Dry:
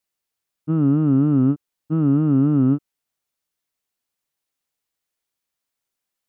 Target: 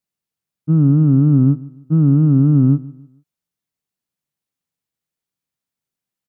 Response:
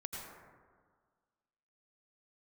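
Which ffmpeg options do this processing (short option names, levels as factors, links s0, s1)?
-filter_complex "[0:a]equalizer=f=150:w=0.87:g=13,asplit=2[s0][s1];[s1]aecho=0:1:150|300|450:0.0944|0.034|0.0122[s2];[s0][s2]amix=inputs=2:normalize=0,volume=0.596"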